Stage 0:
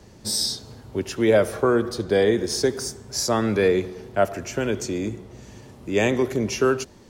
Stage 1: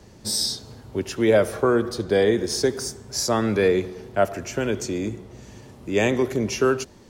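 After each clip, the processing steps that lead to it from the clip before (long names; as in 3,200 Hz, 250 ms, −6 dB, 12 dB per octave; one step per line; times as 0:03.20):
no processing that can be heard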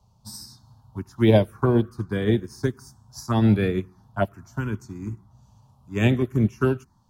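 octave-band graphic EQ 125/500/1,000/2,000/8,000 Hz +6/−11/+9/−10/−6 dB
phaser swept by the level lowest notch 290 Hz, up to 1,300 Hz, full sweep at −17.5 dBFS
expander for the loud parts 2.5 to 1, over −34 dBFS
level +8.5 dB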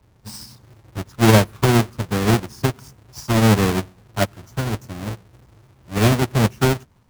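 each half-wave held at its own peak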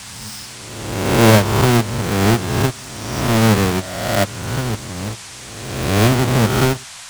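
peak hold with a rise ahead of every peak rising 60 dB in 1.25 s
noise in a band 690–9,200 Hz −36 dBFS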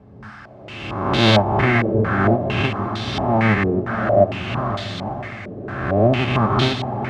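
notch comb filter 480 Hz
feedback delay with all-pass diffusion 579 ms, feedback 42%, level −7 dB
low-pass on a step sequencer 4.4 Hz 450–3,700 Hz
level −4 dB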